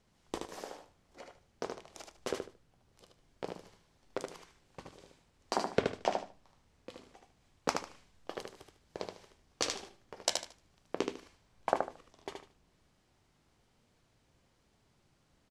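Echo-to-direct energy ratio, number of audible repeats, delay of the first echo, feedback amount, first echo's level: −4.5 dB, 3, 75 ms, 23%, −4.5 dB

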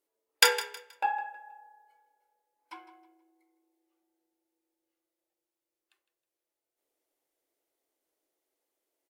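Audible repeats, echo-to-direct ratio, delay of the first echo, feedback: 2, −14.5 dB, 159 ms, 30%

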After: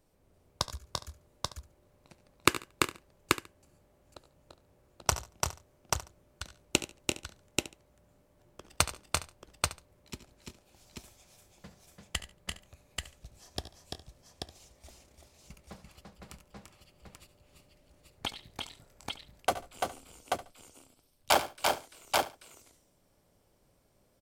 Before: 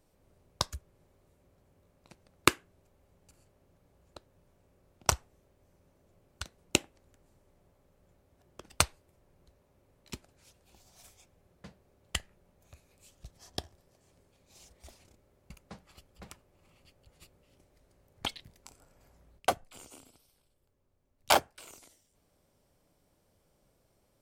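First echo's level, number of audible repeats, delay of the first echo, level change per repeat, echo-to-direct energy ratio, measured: −16.5 dB, 8, 71 ms, repeats not evenly spaced, 0.0 dB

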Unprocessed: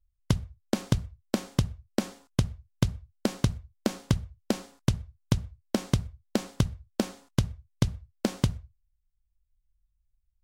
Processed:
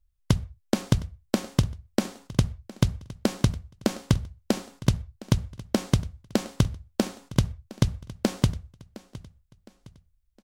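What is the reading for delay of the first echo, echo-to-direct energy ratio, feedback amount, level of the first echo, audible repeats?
712 ms, −18.5 dB, 39%, −19.0 dB, 2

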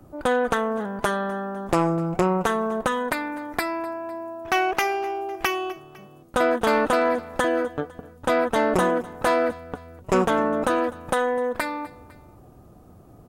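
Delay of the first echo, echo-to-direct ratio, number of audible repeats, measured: 252 ms, −19.5 dB, 2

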